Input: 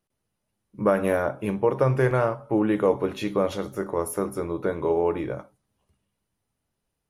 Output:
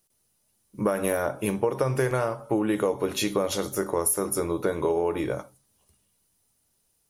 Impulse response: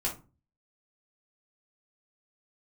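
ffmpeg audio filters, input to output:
-filter_complex "[0:a]bass=f=250:g=-2,treble=f=4k:g=14,acompressor=threshold=-23dB:ratio=10,asplit=2[a][b];[1:a]atrim=start_sample=2205[c];[b][c]afir=irnorm=-1:irlink=0,volume=-27dB[d];[a][d]amix=inputs=2:normalize=0,volume=2.5dB"

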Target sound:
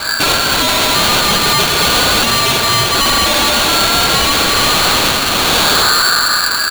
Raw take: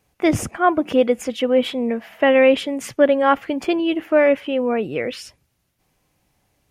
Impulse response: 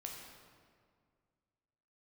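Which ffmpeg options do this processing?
-filter_complex "[0:a]aecho=1:1:74:0.141[a];[1:a]atrim=start_sample=2205[b];[a][b]afir=irnorm=-1:irlink=0,acompressor=threshold=-30dB:ratio=6,lowshelf=f=190:g=7,aecho=1:1:5.6:0.35,apsyclip=35.5dB,aeval=exprs='1.06*sin(PI/2*3.55*val(0)/1.06)':c=same,adynamicequalizer=threshold=0.0398:dfrequency=150:dqfactor=6.2:tfrequency=150:tqfactor=6.2:attack=5:release=100:ratio=0.375:range=2:mode=cutabove:tftype=bell,dynaudnorm=f=640:g=5:m=14dB,asoftclip=type=tanh:threshold=-13dB,lowpass=f=2.7k:t=q:w=0.5098,lowpass=f=2.7k:t=q:w=0.6013,lowpass=f=2.7k:t=q:w=0.9,lowpass=f=2.7k:t=q:w=2.563,afreqshift=-3200,aeval=exprs='val(0)*sgn(sin(2*PI*1500*n/s))':c=same,volume=3dB"

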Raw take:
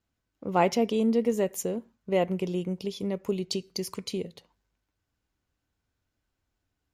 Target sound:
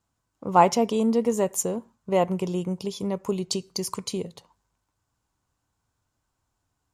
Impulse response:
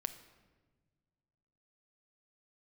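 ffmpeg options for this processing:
-af "equalizer=f=125:t=o:w=1:g=6,equalizer=f=1k:t=o:w=1:g=11,equalizer=f=2k:t=o:w=1:g=-3,equalizer=f=8k:t=o:w=1:g=10"

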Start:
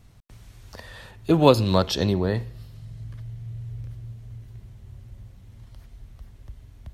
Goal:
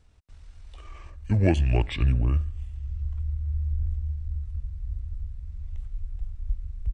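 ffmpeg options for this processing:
-af "asubboost=boost=11.5:cutoff=150,asetrate=28595,aresample=44100,atempo=1.54221,volume=-6dB"

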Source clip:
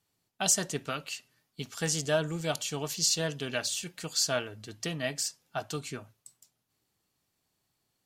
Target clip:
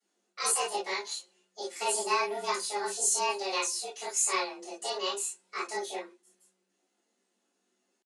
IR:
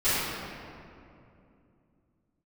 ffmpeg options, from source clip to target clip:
-filter_complex "[0:a]asetrate=64194,aresample=44100,atempo=0.686977,aresample=22050,aresample=44100[a];[1:a]atrim=start_sample=2205,atrim=end_sample=4410,asetrate=61740,aresample=44100[b];[a][b]afir=irnorm=-1:irlink=0,afreqshift=190,volume=-6dB"

